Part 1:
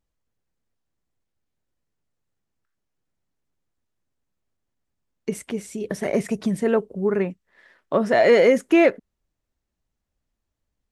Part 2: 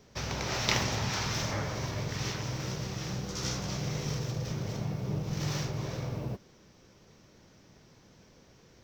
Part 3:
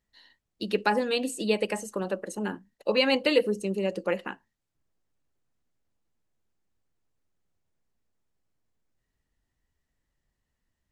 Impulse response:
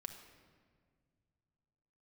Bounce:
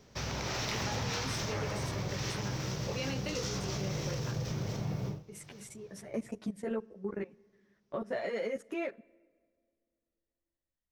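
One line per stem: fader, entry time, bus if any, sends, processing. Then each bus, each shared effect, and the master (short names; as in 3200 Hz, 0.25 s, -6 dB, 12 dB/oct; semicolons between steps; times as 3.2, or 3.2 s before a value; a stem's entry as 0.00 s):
-3.0 dB, 0.00 s, bus A, send -20.5 dB, level quantiser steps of 21 dB; ensemble effect
-0.5 dB, 0.00 s, no bus, no send, auto duck -23 dB, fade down 0.20 s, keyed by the first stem
-4.5 dB, 0.00 s, bus A, no send, chorus 0.48 Hz, delay 20 ms, depth 2.7 ms
bus A: 0.0 dB, gate -60 dBFS, range -9 dB; compressor 1.5:1, threshold -45 dBFS, peak gain reduction 8 dB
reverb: on, RT60 1.9 s, pre-delay 5 ms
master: soft clip -16.5 dBFS, distortion -26 dB; limiter -26 dBFS, peak gain reduction 9 dB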